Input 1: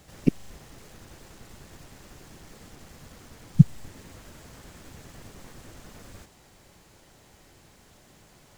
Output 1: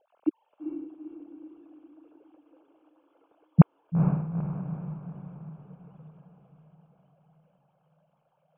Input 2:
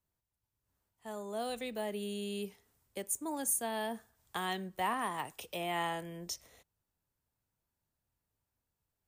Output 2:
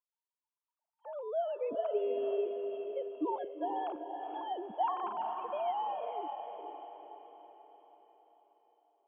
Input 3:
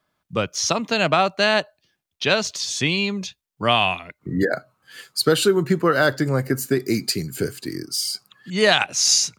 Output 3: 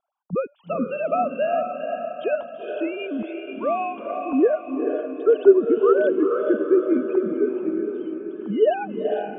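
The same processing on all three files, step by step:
three sine waves on the formant tracks
in parallel at −1 dB: downward compressor, threshold −26 dBFS
on the sum: moving average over 23 samples
feedback delay with all-pass diffusion 452 ms, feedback 50%, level −5 dB
level −2 dB

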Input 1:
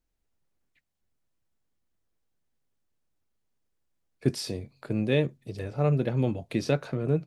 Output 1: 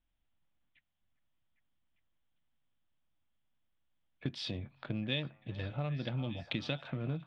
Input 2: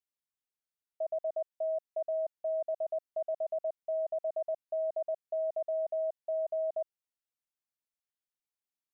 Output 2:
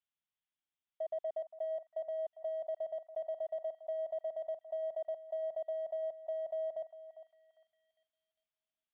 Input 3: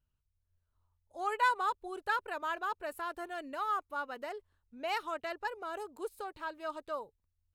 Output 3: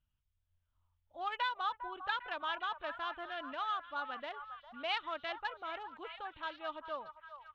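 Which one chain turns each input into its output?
adaptive Wiener filter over 9 samples
parametric band 420 Hz −12 dB 0.45 octaves
downward compressor 6 to 1, threshold −32 dBFS
low-pass with resonance 3,400 Hz, resonance Q 5.1
on a send: echo through a band-pass that steps 402 ms, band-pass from 1,000 Hz, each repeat 0.7 octaves, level −8.5 dB
on the sum: level −1.5 dB

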